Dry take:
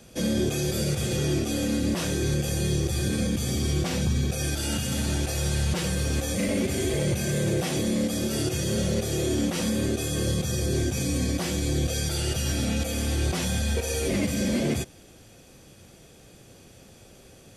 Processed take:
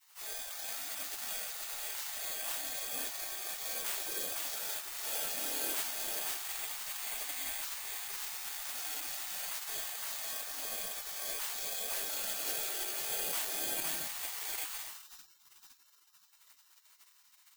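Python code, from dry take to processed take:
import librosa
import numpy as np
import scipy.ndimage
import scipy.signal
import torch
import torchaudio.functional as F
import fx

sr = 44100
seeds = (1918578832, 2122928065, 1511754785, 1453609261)

p1 = fx.bass_treble(x, sr, bass_db=3, treble_db=0)
p2 = fx.hum_notches(p1, sr, base_hz=50, count=7)
p3 = p2 + fx.echo_split(p2, sr, split_hz=520.0, low_ms=82, high_ms=513, feedback_pct=52, wet_db=-3, dry=0)
p4 = (np.kron(scipy.signal.resample_poly(p3, 1, 4), np.eye(4)[0]) * 4)[:len(p3)]
p5 = fx.spec_gate(p4, sr, threshold_db=-25, keep='weak')
p6 = 10.0 ** (-36.0 / 20.0) * (np.abs((p5 / 10.0 ** (-36.0 / 20.0) + 3.0) % 4.0 - 2.0) - 1.0)
p7 = p5 + (p6 * librosa.db_to_amplitude(-7.5))
y = p7 * librosa.db_to_amplitude(-7.0)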